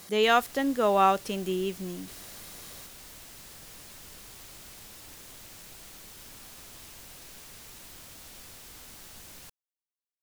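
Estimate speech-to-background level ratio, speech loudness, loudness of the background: 20.0 dB, -25.5 LUFS, -45.5 LUFS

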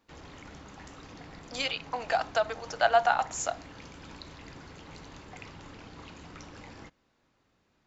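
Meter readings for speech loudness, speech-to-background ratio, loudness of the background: -29.0 LUFS, 18.5 dB, -47.5 LUFS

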